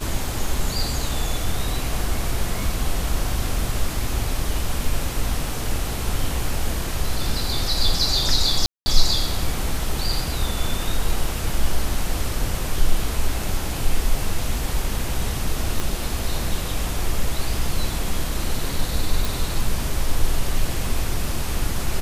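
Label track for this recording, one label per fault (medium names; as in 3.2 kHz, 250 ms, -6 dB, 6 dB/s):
8.660000	8.860000	dropout 200 ms
15.800000	15.800000	pop -9 dBFS
19.250000	19.250000	pop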